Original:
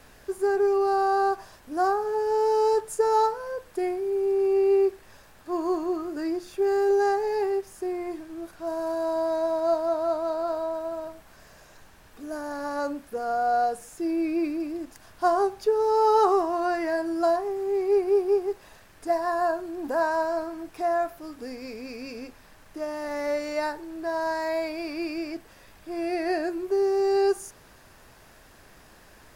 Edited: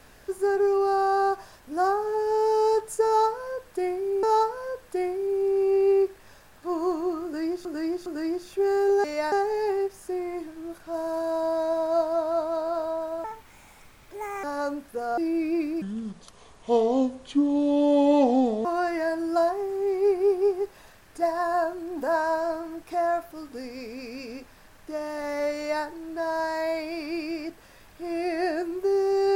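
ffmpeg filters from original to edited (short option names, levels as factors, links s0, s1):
-filter_complex "[0:a]asplit=11[s0][s1][s2][s3][s4][s5][s6][s7][s8][s9][s10];[s0]atrim=end=4.232[s11];[s1]atrim=start=3.058:end=6.482[s12];[s2]atrim=start=6.068:end=6.482[s13];[s3]atrim=start=6.068:end=7.052[s14];[s4]atrim=start=23.428:end=23.712[s15];[s5]atrim=start=7.048:end=10.974[s16];[s6]atrim=start=10.97:end=12.62,asetpts=PTS-STARTPTS,asetrate=60858,aresample=44100,atrim=end_sample=52728,asetpts=PTS-STARTPTS[s17];[s7]atrim=start=12.616:end=13.362[s18];[s8]atrim=start=14.008:end=14.654[s19];[s9]atrim=start=14.65:end=16.52,asetpts=PTS-STARTPTS,asetrate=29106,aresample=44100[s20];[s10]atrim=start=16.516[s21];[s11][s12]acrossfade=d=0.004:c1=hsin:c2=hsin[s22];[s22][s13]acrossfade=d=0.004:c1=hsin:c2=hsin[s23];[s23][s14]acrossfade=d=0.004:c1=hsin:c2=hsin[s24];[s24][s15]acrossfade=d=0.004:c1=hsin:c2=hsin[s25];[s25][s16]acrossfade=d=0.004:c1=hsin:c2=hsin[s26];[s26][s17]acrossfade=d=0.004:c1=hsin:c2=hsin[s27];[s27][s18]acrossfade=d=0.004:c1=hsin:c2=hsin[s28];[s28][s19]acrossfade=d=0.004:c1=hsin:c2=hsin[s29];[s29][s20]acrossfade=d=0.004:c1=hsin:c2=hsin[s30];[s30][s21]acrossfade=d=0.004:c1=hsin:c2=hsin"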